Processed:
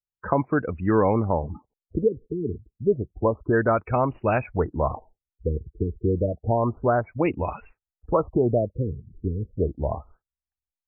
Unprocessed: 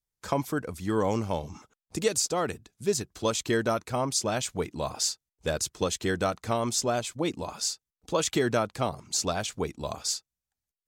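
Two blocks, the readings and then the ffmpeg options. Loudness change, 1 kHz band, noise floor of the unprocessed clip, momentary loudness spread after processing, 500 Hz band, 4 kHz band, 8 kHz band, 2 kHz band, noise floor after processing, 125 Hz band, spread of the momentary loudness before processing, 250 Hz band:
+4.0 dB, +4.5 dB, under -85 dBFS, 10 LU, +5.5 dB, under -30 dB, under -40 dB, +1.5 dB, under -85 dBFS, +8.5 dB, 7 LU, +5.5 dB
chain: -filter_complex "[0:a]acrossover=split=880[s0][s1];[s1]acrusher=bits=3:mode=log:mix=0:aa=0.000001[s2];[s0][s2]amix=inputs=2:normalize=0,lowpass=5300,asubboost=boost=4:cutoff=83,asplit=2[s3][s4];[s4]alimiter=limit=0.0794:level=0:latency=1:release=387,volume=1.12[s5];[s3][s5]amix=inputs=2:normalize=0,afftdn=nr=20:nf=-35,afftfilt=real='re*lt(b*sr/1024,450*pow(3000/450,0.5+0.5*sin(2*PI*0.3*pts/sr)))':imag='im*lt(b*sr/1024,450*pow(3000/450,0.5+0.5*sin(2*PI*0.3*pts/sr)))':win_size=1024:overlap=0.75,volume=1.33"

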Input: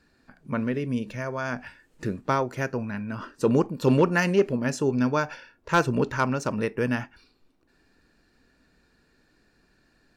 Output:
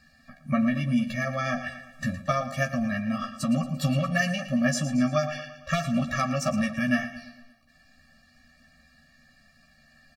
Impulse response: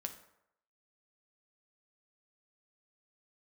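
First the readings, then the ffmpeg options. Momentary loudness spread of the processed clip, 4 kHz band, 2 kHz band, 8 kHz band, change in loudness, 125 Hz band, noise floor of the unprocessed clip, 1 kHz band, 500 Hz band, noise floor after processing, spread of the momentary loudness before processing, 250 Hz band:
8 LU, +3.5 dB, +0.5 dB, +4.0 dB, -1.0 dB, 0.0 dB, -66 dBFS, -2.5 dB, -6.0 dB, -60 dBFS, 12 LU, +0.5 dB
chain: -filter_complex "[0:a]tiltshelf=f=650:g=-3,acompressor=threshold=0.0562:ratio=5,asplit=2[s0][s1];[s1]adelay=13,volume=0.631[s2];[s0][s2]amix=inputs=2:normalize=0,aecho=1:1:114|228|342|456|570:0.224|0.116|0.0605|0.0315|0.0164,afftfilt=real='re*eq(mod(floor(b*sr/1024/270),2),0)':imag='im*eq(mod(floor(b*sr/1024/270),2),0)':win_size=1024:overlap=0.75,volume=1.88"

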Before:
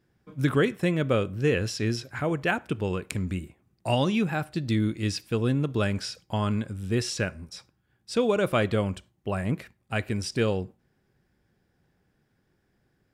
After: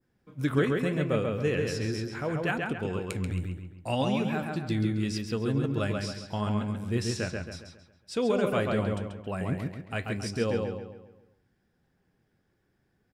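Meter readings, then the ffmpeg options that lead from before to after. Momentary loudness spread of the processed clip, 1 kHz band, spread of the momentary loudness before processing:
9 LU, -2.5 dB, 9 LU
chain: -filter_complex "[0:a]adynamicequalizer=threshold=0.00708:dfrequency=3300:dqfactor=0.85:tfrequency=3300:tqfactor=0.85:attack=5:release=100:ratio=0.375:range=2:mode=cutabove:tftype=bell,flanger=delay=3.7:depth=7.9:regen=65:speed=0.76:shape=sinusoidal,asplit=2[s0][s1];[s1]adelay=136,lowpass=f=4300:p=1,volume=0.708,asplit=2[s2][s3];[s3]adelay=136,lowpass=f=4300:p=1,volume=0.44,asplit=2[s4][s5];[s5]adelay=136,lowpass=f=4300:p=1,volume=0.44,asplit=2[s6][s7];[s7]adelay=136,lowpass=f=4300:p=1,volume=0.44,asplit=2[s8][s9];[s9]adelay=136,lowpass=f=4300:p=1,volume=0.44,asplit=2[s10][s11];[s11]adelay=136,lowpass=f=4300:p=1,volume=0.44[s12];[s0][s2][s4][s6][s8][s10][s12]amix=inputs=7:normalize=0"

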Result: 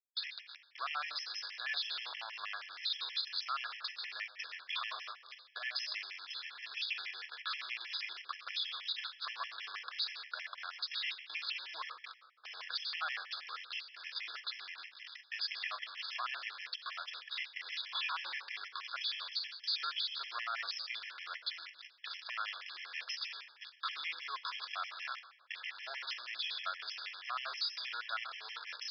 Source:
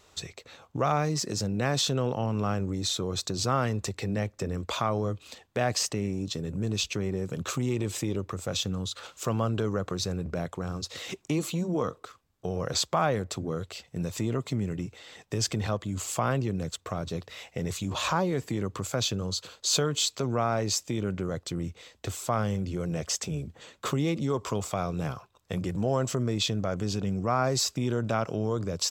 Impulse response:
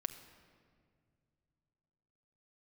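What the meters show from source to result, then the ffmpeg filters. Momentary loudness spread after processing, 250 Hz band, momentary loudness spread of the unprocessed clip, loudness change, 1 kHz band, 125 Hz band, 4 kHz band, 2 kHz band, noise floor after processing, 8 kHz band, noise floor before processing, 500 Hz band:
8 LU, under -40 dB, 9 LU, -9.5 dB, -10.5 dB, under -40 dB, -3.5 dB, -0.5 dB, -61 dBFS, -27.5 dB, -63 dBFS, -31.0 dB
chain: -filter_complex "[0:a]aeval=exprs='0.266*(cos(1*acos(clip(val(0)/0.266,-1,1)))-cos(1*PI/2))+0.0473*(cos(5*acos(clip(val(0)/0.266,-1,1)))-cos(5*PI/2))':c=same,aresample=11025,acrusher=bits=5:mix=0:aa=0.5,aresample=44100,highpass=f=1400:w=0.5412,highpass=f=1400:w=1.3066[s0];[1:a]atrim=start_sample=2205,asetrate=83790,aresample=44100[s1];[s0][s1]afir=irnorm=-1:irlink=0,alimiter=level_in=2.99:limit=0.0631:level=0:latency=1:release=56,volume=0.335,afftfilt=real='re*gt(sin(2*PI*6.3*pts/sr)*(1-2*mod(floor(b*sr/1024/1700),2)),0)':imag='im*gt(sin(2*PI*6.3*pts/sr)*(1-2*mod(floor(b*sr/1024/1700),2)),0)':win_size=1024:overlap=0.75,volume=2.51"

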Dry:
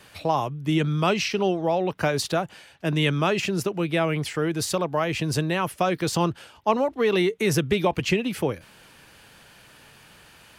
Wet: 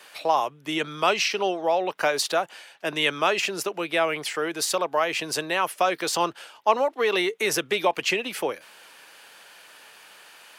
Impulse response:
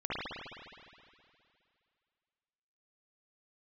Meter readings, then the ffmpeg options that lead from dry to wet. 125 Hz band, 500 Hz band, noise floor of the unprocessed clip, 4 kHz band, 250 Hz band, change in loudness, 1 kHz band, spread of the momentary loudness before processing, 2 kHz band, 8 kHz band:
-17.5 dB, -0.5 dB, -52 dBFS, +3.0 dB, -8.0 dB, -0.5 dB, +2.5 dB, 5 LU, +3.0 dB, +3.0 dB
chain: -af "highpass=520,volume=1.41"

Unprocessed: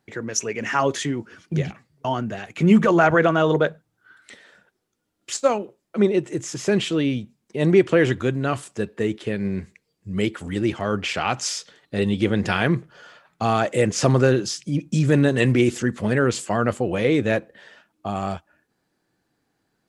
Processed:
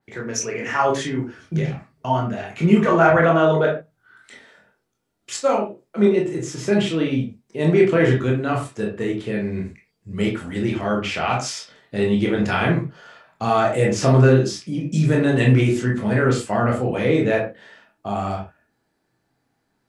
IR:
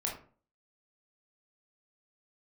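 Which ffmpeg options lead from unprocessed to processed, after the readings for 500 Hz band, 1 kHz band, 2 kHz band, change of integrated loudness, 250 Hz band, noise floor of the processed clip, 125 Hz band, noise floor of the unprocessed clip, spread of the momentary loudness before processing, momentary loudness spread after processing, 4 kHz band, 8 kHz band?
+2.0 dB, +2.5 dB, +1.0 dB, +2.0 dB, +1.0 dB, -72 dBFS, +3.5 dB, -74 dBFS, 13 LU, 13 LU, -1.0 dB, -2.0 dB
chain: -filter_complex "[1:a]atrim=start_sample=2205,atrim=end_sample=6615[s0];[0:a][s0]afir=irnorm=-1:irlink=0,adynamicequalizer=threshold=0.0126:dfrequency=3700:dqfactor=0.7:tfrequency=3700:tqfactor=0.7:attack=5:release=100:ratio=0.375:range=1.5:mode=cutabove:tftype=highshelf,volume=0.841"

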